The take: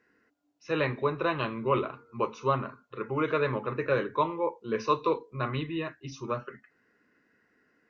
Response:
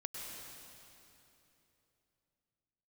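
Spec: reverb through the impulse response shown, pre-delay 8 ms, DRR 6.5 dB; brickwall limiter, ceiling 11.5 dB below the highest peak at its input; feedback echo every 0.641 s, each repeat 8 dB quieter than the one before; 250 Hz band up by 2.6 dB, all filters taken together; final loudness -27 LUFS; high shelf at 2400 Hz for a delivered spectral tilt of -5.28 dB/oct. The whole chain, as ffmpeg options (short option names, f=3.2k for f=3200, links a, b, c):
-filter_complex "[0:a]equalizer=f=250:t=o:g=3.5,highshelf=f=2.4k:g=3.5,alimiter=limit=-22dB:level=0:latency=1,aecho=1:1:641|1282|1923|2564|3205:0.398|0.159|0.0637|0.0255|0.0102,asplit=2[a][b];[1:a]atrim=start_sample=2205,adelay=8[c];[b][c]afir=irnorm=-1:irlink=0,volume=-6dB[d];[a][d]amix=inputs=2:normalize=0,volume=5.5dB"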